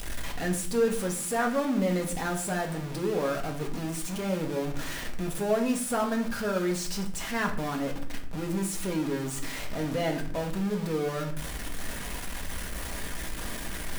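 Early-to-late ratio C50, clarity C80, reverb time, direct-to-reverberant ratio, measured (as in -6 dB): 10.5 dB, 14.0 dB, 0.55 s, 1.0 dB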